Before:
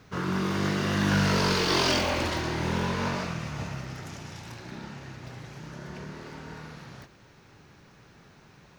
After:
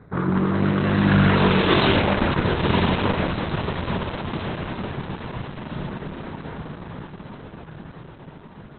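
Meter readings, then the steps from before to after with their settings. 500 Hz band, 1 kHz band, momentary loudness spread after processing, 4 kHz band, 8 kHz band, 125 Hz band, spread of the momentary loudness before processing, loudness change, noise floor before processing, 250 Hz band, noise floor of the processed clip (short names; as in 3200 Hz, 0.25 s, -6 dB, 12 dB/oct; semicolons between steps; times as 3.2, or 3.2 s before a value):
+7.5 dB, +6.5 dB, 21 LU, +2.5 dB, under -40 dB, +8.0 dB, 19 LU, +5.0 dB, -56 dBFS, +8.5 dB, -44 dBFS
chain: Wiener smoothing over 15 samples; diffused feedback echo 1.023 s, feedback 53%, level -5 dB; gain +8.5 dB; Opus 8 kbps 48000 Hz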